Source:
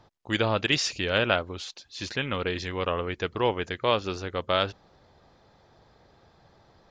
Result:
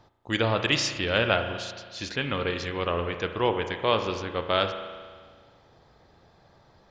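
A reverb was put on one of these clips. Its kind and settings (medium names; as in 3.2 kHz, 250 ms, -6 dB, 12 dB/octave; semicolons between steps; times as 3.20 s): spring tank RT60 1.7 s, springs 35 ms, chirp 45 ms, DRR 7 dB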